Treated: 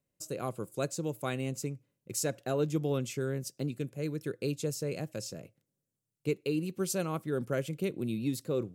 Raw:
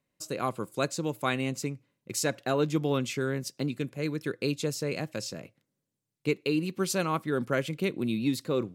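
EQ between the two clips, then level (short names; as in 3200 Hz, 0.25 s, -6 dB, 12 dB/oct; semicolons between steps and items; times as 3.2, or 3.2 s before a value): graphic EQ 250/1000/2000/4000 Hz -5/-8/-7/-7 dB; 0.0 dB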